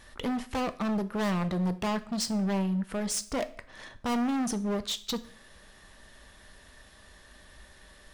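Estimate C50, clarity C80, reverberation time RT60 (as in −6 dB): 16.5 dB, 21.0 dB, 0.50 s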